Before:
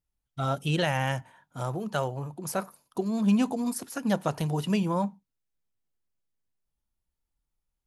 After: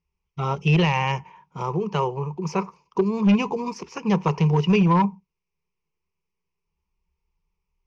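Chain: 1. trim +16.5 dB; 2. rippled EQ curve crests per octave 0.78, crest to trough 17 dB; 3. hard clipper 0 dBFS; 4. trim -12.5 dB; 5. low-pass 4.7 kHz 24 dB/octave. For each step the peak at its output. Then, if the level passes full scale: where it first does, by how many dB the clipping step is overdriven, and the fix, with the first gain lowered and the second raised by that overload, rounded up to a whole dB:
+3.5 dBFS, +5.5 dBFS, 0.0 dBFS, -12.5 dBFS, -11.5 dBFS; step 1, 5.5 dB; step 1 +10.5 dB, step 4 -6.5 dB

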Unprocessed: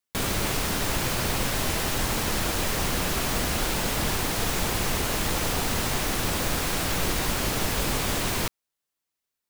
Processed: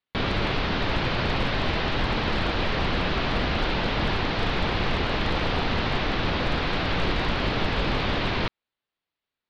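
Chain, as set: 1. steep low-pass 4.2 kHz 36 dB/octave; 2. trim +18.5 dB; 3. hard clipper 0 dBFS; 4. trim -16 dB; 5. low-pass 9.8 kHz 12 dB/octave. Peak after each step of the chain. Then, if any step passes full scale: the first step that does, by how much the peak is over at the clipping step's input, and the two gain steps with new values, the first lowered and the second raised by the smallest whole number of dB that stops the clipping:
-14.5 dBFS, +4.0 dBFS, 0.0 dBFS, -16.0 dBFS, -16.0 dBFS; step 2, 4.0 dB; step 2 +14.5 dB, step 4 -12 dB

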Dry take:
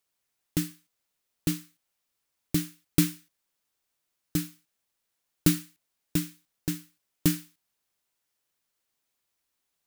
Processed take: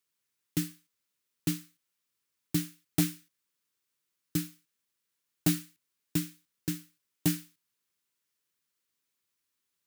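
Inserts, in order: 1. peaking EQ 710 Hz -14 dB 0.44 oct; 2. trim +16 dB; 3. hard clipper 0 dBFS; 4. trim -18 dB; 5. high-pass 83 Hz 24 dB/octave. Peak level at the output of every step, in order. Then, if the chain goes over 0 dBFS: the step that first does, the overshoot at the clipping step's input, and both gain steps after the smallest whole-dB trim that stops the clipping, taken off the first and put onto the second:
-7.0 dBFS, +9.0 dBFS, 0.0 dBFS, -18.0 dBFS, -11.5 dBFS; step 2, 9.0 dB; step 2 +7 dB, step 4 -9 dB

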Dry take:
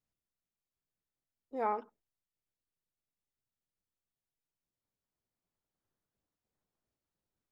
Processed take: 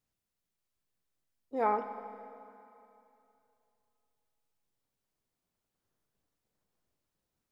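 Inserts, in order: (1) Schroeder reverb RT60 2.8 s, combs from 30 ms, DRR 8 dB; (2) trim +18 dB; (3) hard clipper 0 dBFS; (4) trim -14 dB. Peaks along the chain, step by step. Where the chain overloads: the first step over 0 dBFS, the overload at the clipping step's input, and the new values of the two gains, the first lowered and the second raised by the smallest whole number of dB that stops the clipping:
-20.5 dBFS, -2.5 dBFS, -2.5 dBFS, -16.5 dBFS; nothing clips

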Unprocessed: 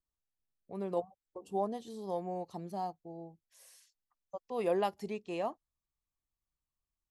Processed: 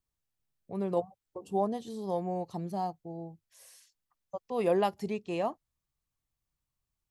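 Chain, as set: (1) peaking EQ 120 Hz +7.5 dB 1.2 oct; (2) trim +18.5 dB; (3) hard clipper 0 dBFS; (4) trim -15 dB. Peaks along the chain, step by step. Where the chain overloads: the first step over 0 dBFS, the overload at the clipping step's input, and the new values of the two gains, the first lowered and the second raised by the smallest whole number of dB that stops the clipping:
-20.0 dBFS, -1.5 dBFS, -1.5 dBFS, -16.5 dBFS; nothing clips

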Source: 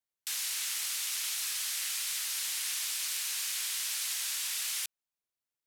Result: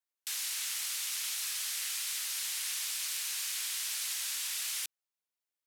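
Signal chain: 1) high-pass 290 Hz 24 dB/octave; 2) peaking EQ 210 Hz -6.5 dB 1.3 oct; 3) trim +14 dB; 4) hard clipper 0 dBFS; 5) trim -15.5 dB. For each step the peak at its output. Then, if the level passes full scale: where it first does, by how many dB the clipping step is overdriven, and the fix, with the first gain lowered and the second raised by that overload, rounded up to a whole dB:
-20.0 dBFS, -20.0 dBFS, -6.0 dBFS, -6.0 dBFS, -21.5 dBFS; nothing clips

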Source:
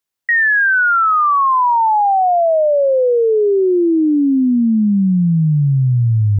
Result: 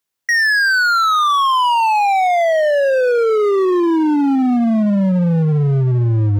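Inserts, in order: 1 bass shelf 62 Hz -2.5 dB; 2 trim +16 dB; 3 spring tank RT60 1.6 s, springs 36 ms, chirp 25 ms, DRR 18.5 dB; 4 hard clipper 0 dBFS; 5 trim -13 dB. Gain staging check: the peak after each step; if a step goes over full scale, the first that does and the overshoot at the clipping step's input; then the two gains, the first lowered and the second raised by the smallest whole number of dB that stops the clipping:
-10.0 dBFS, +6.0 dBFS, +8.0 dBFS, 0.0 dBFS, -13.0 dBFS; step 2, 8.0 dB; step 2 +8 dB, step 5 -5 dB

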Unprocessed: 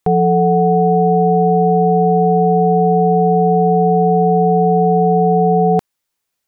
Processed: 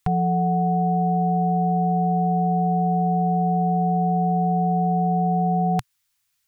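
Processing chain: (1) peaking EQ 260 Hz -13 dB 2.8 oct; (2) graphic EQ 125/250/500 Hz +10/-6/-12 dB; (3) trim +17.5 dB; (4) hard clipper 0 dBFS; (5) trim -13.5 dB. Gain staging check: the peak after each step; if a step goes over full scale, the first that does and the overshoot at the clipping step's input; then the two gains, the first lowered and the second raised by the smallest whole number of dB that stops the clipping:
-13.0 dBFS, -14.5 dBFS, +3.0 dBFS, 0.0 dBFS, -13.5 dBFS; step 3, 3.0 dB; step 3 +14.5 dB, step 5 -10.5 dB

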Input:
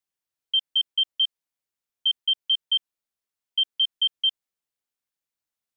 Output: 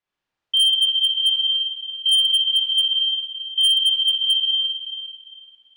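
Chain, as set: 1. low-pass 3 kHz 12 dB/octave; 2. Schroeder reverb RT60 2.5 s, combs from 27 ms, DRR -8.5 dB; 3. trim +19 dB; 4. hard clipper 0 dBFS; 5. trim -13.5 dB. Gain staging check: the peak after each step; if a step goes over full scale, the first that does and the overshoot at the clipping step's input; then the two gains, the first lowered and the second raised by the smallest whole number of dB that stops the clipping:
-20.0 dBFS, -12.5 dBFS, +6.5 dBFS, 0.0 dBFS, -13.5 dBFS; step 3, 6.5 dB; step 3 +12 dB, step 5 -6.5 dB

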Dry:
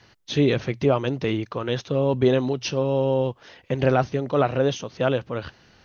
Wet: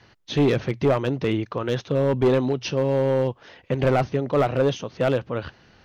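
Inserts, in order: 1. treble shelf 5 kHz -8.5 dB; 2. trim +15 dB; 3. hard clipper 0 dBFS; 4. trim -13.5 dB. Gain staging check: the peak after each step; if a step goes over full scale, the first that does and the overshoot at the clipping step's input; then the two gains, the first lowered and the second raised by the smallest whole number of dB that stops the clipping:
-6.5 dBFS, +8.5 dBFS, 0.0 dBFS, -13.5 dBFS; step 2, 8.5 dB; step 2 +6 dB, step 4 -4.5 dB

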